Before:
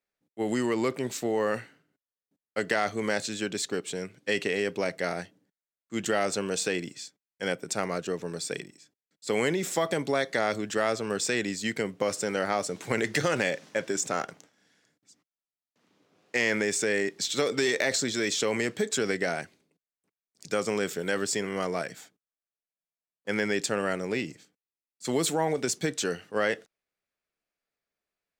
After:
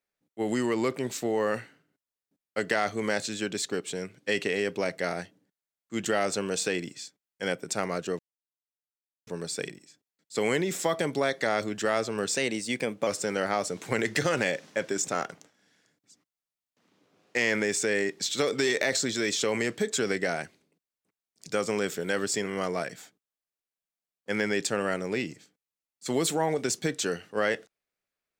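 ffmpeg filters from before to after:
ffmpeg -i in.wav -filter_complex "[0:a]asplit=4[link_01][link_02][link_03][link_04];[link_01]atrim=end=8.19,asetpts=PTS-STARTPTS,afade=type=out:start_time=8.186:duration=0.004:curve=hsin,apad=pad_dur=1.08[link_05];[link_02]atrim=start=8.19:end=11.294,asetpts=PTS-STARTPTS,afade=type=in:duration=0.004:curve=hsin[link_06];[link_03]atrim=start=11.29:end=12.06,asetpts=PTS-STARTPTS,asetrate=48510,aresample=44100[link_07];[link_04]atrim=start=12.056[link_08];[link_05][link_06]concat=n=2:v=0:a=1[link_09];[link_09][link_07]acrossfade=duration=0.004:curve1=hsin:curve2=hsin[link_10];[link_10][link_08]acrossfade=duration=0.004:curve1=hsin:curve2=hsin" out.wav

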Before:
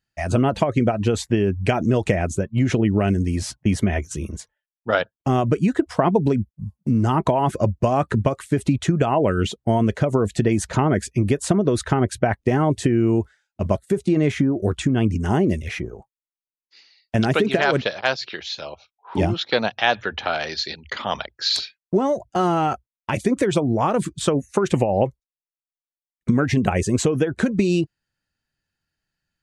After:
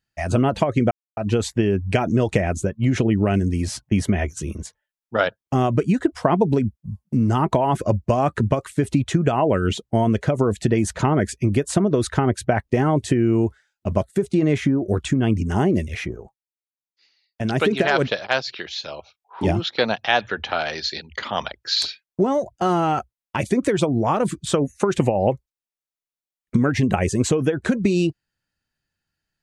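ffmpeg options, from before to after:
ffmpeg -i in.wav -filter_complex "[0:a]asplit=4[link_01][link_02][link_03][link_04];[link_01]atrim=end=0.91,asetpts=PTS-STARTPTS,afade=type=out:start_time=0.906:duration=0.004:curve=hsin,apad=pad_dur=0.26[link_05];[link_02]atrim=start=0.91:end=16.21,asetpts=PTS-STARTPTS,afade=type=in:duration=0.004:curve=hsin,afade=type=out:start_time=15:duration=0.3:silence=0.316228[link_06];[link_03]atrim=start=16.21:end=17.08,asetpts=PTS-STARTPTS,volume=-10dB[link_07];[link_04]atrim=start=17.08,asetpts=PTS-STARTPTS,afade=type=in:duration=0.3:silence=0.316228[link_08];[link_05][link_06][link_07][link_08]concat=n=4:v=0:a=1" out.wav

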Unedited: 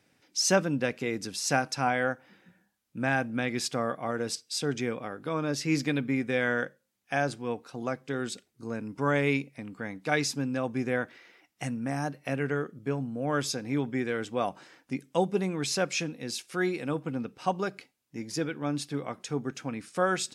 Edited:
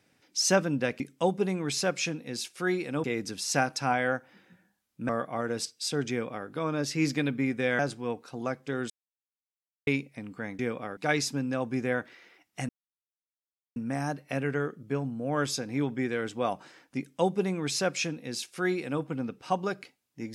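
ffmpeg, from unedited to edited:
ffmpeg -i in.wav -filter_complex "[0:a]asplit=10[link_01][link_02][link_03][link_04][link_05][link_06][link_07][link_08][link_09][link_10];[link_01]atrim=end=1.002[link_11];[link_02]atrim=start=14.938:end=16.982[link_12];[link_03]atrim=start=0.998:end=3.052[link_13];[link_04]atrim=start=3.788:end=6.492[link_14];[link_05]atrim=start=7.198:end=8.31,asetpts=PTS-STARTPTS,afade=type=out:start_time=1.108:duration=0.004:curve=hsin[link_15];[link_06]atrim=start=8.31:end=9.28,asetpts=PTS-STARTPTS,volume=0[link_16];[link_07]atrim=start=9.28:end=10.002,asetpts=PTS-STARTPTS,afade=type=in:duration=0.004:curve=hsin[link_17];[link_08]atrim=start=4.798:end=5.182[link_18];[link_09]atrim=start=9.998:end=11.72,asetpts=PTS-STARTPTS,afade=type=out:start_time=1.718:duration=0.004:curve=hsin,apad=pad_dur=1.07[link_19];[link_10]atrim=start=11.72,asetpts=PTS-STARTPTS,afade=type=in:duration=0.004:curve=hsin[link_20];[link_11][link_12]acrossfade=duration=0.004:curve1=hsin:curve2=hsin[link_21];[link_21][link_13]acrossfade=duration=0.004:curve1=hsin:curve2=hsin[link_22];[link_22][link_14]acrossfade=duration=0.004:curve1=hsin:curve2=hsin[link_23];[link_15][link_16][link_17]concat=n=3:v=0:a=1[link_24];[link_23][link_24]acrossfade=duration=0.004:curve1=hsin:curve2=hsin[link_25];[link_25][link_18]acrossfade=duration=0.004:curve1=hsin:curve2=hsin[link_26];[link_19][link_20]concat=n=2:v=0:a=1[link_27];[link_26][link_27]acrossfade=duration=0.004:curve1=hsin:curve2=hsin" out.wav

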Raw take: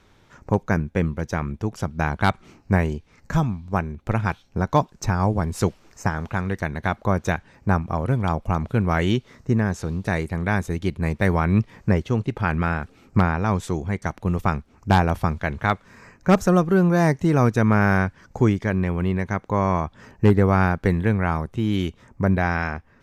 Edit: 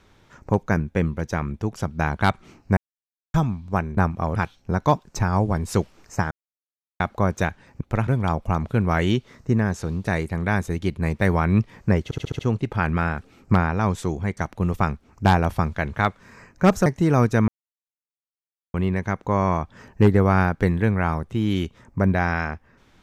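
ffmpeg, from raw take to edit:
ffmpeg -i in.wav -filter_complex "[0:a]asplit=17[link_01][link_02][link_03][link_04][link_05][link_06][link_07][link_08][link_09][link_10][link_11][link_12][link_13][link_14][link_15][link_16][link_17];[link_01]atrim=end=2.77,asetpts=PTS-STARTPTS,afade=type=out:start_time=2.766:duration=0.004:curve=hsin[link_18];[link_02]atrim=start=2.77:end=3.34,asetpts=PTS-STARTPTS,volume=0[link_19];[link_03]atrim=start=3.34:end=3.972,asetpts=PTS-STARTPTS,afade=type=in:duration=0.004:curve=hsin[link_20];[link_04]atrim=start=7.678:end=8.072[link_21];[link_05]atrim=start=4.228:end=6.18,asetpts=PTS-STARTPTS,afade=type=out:start_time=1.948:duration=0.004:curve=hsin[link_22];[link_06]atrim=start=6.18:end=6.87,asetpts=PTS-STARTPTS,volume=0[link_23];[link_07]atrim=start=6.87:end=7.682,asetpts=PTS-STARTPTS,afade=type=in:duration=0.004:curve=hsin[link_24];[link_08]atrim=start=3.968:end=4.232[link_25];[link_09]atrim=start=8.068:end=12.112[link_26];[link_10]atrim=start=12.038:end=12.112[link_27];[link_11]atrim=start=12.038:end=12.112[link_28];[link_12]atrim=start=12.038:end=12.112[link_29];[link_13]atrim=start=12.038:end=12.112[link_30];[link_14]atrim=start=12.038:end=16.512[link_31];[link_15]atrim=start=17.088:end=17.71,asetpts=PTS-STARTPTS,afade=type=out:start_time=0.618:duration=0.004:curve=hsin[link_32];[link_16]atrim=start=17.71:end=18.97,asetpts=PTS-STARTPTS,volume=0[link_33];[link_17]atrim=start=18.97,asetpts=PTS-STARTPTS,afade=type=in:duration=0.004:curve=hsin[link_34];[link_18][link_19][link_20]concat=n=3:v=0:a=1[link_35];[link_35][link_21]acrossfade=duration=0.004:curve1=hsin:curve2=hsin[link_36];[link_22][link_23][link_24]concat=n=3:v=0:a=1[link_37];[link_36][link_37]acrossfade=duration=0.004:curve1=hsin:curve2=hsin[link_38];[link_38][link_25]acrossfade=duration=0.004:curve1=hsin:curve2=hsin[link_39];[link_39][link_26]acrossfade=duration=0.004:curve1=hsin:curve2=hsin[link_40];[link_40][link_27]acrossfade=duration=0.004:curve1=hsin:curve2=hsin[link_41];[link_41][link_28]acrossfade=duration=0.004:curve1=hsin:curve2=hsin[link_42];[link_42][link_29]acrossfade=duration=0.004:curve1=hsin:curve2=hsin[link_43];[link_43][link_30]acrossfade=duration=0.004:curve1=hsin:curve2=hsin[link_44];[link_44][link_31]acrossfade=duration=0.004:curve1=hsin:curve2=hsin[link_45];[link_32][link_33][link_34]concat=n=3:v=0:a=1[link_46];[link_45][link_46]acrossfade=duration=0.004:curve1=hsin:curve2=hsin" out.wav

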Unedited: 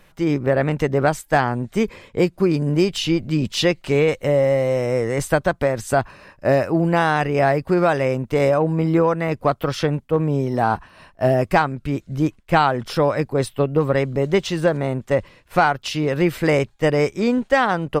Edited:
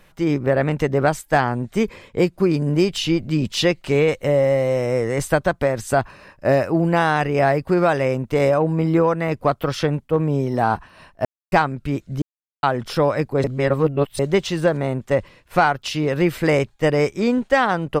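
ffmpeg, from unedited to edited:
ffmpeg -i in.wav -filter_complex "[0:a]asplit=7[link_01][link_02][link_03][link_04][link_05][link_06][link_07];[link_01]atrim=end=11.25,asetpts=PTS-STARTPTS,afade=type=out:start_time=11.246:duration=0.004:curve=hsin[link_08];[link_02]atrim=start=11.25:end=11.52,asetpts=PTS-STARTPTS,volume=0[link_09];[link_03]atrim=start=11.52:end=12.22,asetpts=PTS-STARTPTS,afade=type=in:duration=0.004:curve=hsin,afade=type=out:start_time=0.696:duration=0.004:curve=hsin[link_10];[link_04]atrim=start=12.22:end=12.63,asetpts=PTS-STARTPTS,volume=0[link_11];[link_05]atrim=start=12.63:end=13.442,asetpts=PTS-STARTPTS,afade=type=in:duration=0.004:curve=hsin[link_12];[link_06]atrim=start=13.438:end=14.192,asetpts=PTS-STARTPTS,areverse[link_13];[link_07]atrim=start=14.188[link_14];[link_08][link_09][link_10][link_11][link_12]concat=n=5:v=0:a=1[link_15];[link_15][link_13]acrossfade=duration=0.004:curve1=hsin:curve2=hsin[link_16];[link_16][link_14]acrossfade=duration=0.004:curve1=hsin:curve2=hsin" out.wav

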